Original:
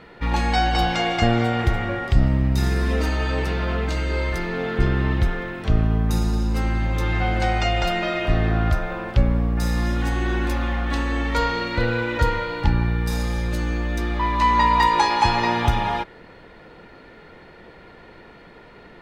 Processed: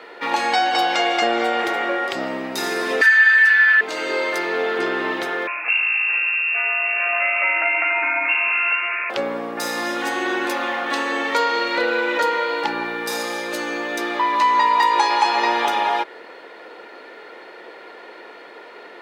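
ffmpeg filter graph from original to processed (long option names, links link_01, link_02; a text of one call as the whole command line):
ffmpeg -i in.wav -filter_complex "[0:a]asettb=1/sr,asplit=3[link_01][link_02][link_03];[link_01]atrim=end=3.014[link_04];[link_02]atrim=start=3.01:end=3.81,asetpts=PTS-STARTPTS,afade=type=in:duration=0.004:curve=qsin,afade=type=out:start_time=0.796:duration=0.004:curve=qsin,highpass=frequency=1700:width_type=q:width=13,aecho=1:1:4.5:0.86,atrim=end_sample=35280[link_05];[link_03]atrim=start=3.806[link_06];[link_04][link_05]acrossfade=duration=0.004:curve1=hsin:curve2=qsin[link_07];[link_07][link_06]acrossfade=duration=0.004:curve1=qsin:curve2=hsin,asettb=1/sr,asplit=3[link_08][link_09][link_10];[link_08]atrim=end=5.474[link_11];[link_09]atrim=start=5.47:end=9.1,asetpts=PTS-STARTPTS,afade=type=in:duration=0.004:curve=qsin,afade=type=out:start_time=3.626:duration=0.004:curve=qsin,lowshelf=frequency=250:gain=-8,lowpass=frequency=2400:width_type=q:width=0.5098,lowpass=frequency=2400:width_type=q:width=0.6013,lowpass=frequency=2400:width_type=q:width=0.9,lowpass=frequency=2400:width_type=q:width=2.563,afreqshift=-2800[link_12];[link_10]atrim=start=9.096[link_13];[link_11][link_12]acrossfade=duration=0.004:curve1=hsin:curve2=qsin[link_14];[link_14][link_13]acrossfade=duration=0.004:curve1=qsin:curve2=hsin,highpass=frequency=350:width=0.5412,highpass=frequency=350:width=1.3066,acompressor=threshold=-25dB:ratio=2,volume=7dB" out.wav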